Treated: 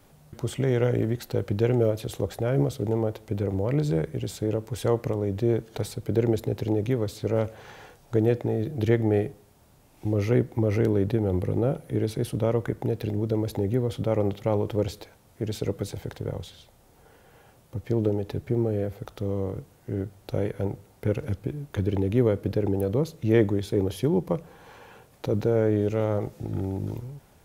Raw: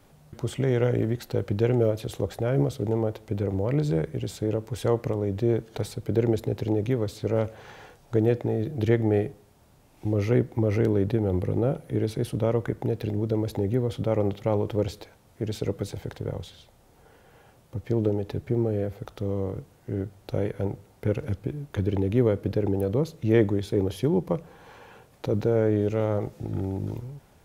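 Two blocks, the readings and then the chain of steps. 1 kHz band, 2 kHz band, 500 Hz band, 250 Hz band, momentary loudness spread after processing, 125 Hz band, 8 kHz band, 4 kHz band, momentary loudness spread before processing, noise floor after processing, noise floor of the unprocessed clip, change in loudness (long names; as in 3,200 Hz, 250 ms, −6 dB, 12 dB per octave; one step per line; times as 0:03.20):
0.0 dB, 0.0 dB, 0.0 dB, 0.0 dB, 11 LU, 0.0 dB, +2.0 dB, +0.5 dB, 11 LU, −57 dBFS, −57 dBFS, 0.0 dB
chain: high-shelf EQ 8,100 Hz +4.5 dB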